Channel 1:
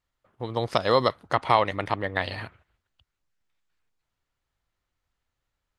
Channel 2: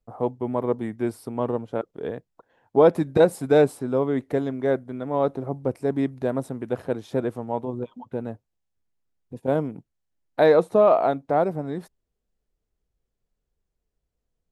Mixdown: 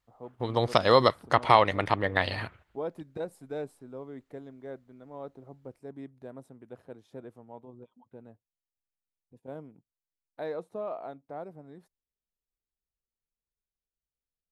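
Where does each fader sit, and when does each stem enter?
+1.0, -19.0 dB; 0.00, 0.00 s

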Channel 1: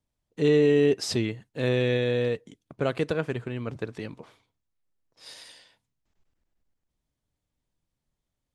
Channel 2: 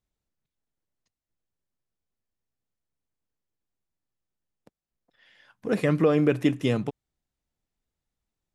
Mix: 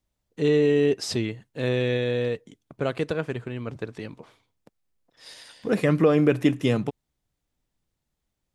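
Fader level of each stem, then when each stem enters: 0.0, +2.0 dB; 0.00, 0.00 s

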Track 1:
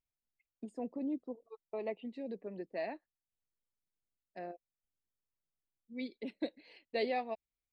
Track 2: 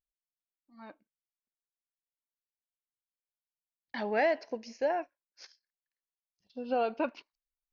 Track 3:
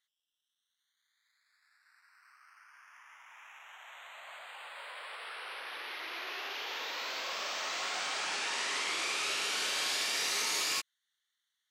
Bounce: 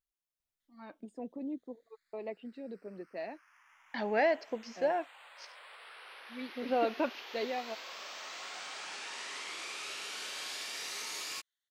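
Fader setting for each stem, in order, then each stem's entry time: -2.0, -0.5, -8.0 dB; 0.40, 0.00, 0.60 s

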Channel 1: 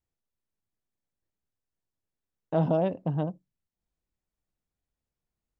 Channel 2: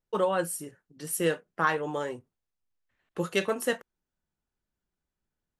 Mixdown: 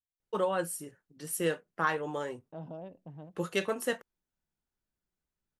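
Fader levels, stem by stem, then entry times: -18.5, -3.5 dB; 0.00, 0.20 s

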